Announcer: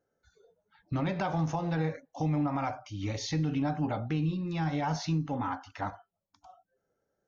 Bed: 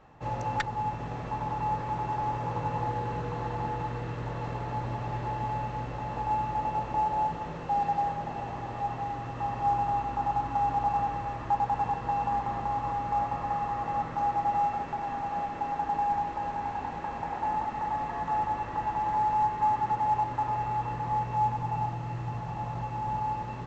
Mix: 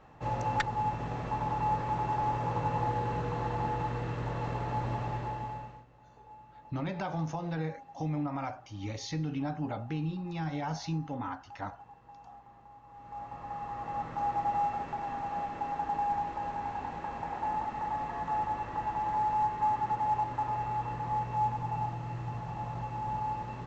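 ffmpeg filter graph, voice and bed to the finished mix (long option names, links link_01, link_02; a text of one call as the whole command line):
ffmpeg -i stem1.wav -i stem2.wav -filter_complex "[0:a]adelay=5800,volume=-4dB[link_01];[1:a]volume=20.5dB,afade=type=out:start_time=4.97:duration=0.88:silence=0.0668344,afade=type=in:start_time=12.88:duration=1.48:silence=0.0944061[link_02];[link_01][link_02]amix=inputs=2:normalize=0" out.wav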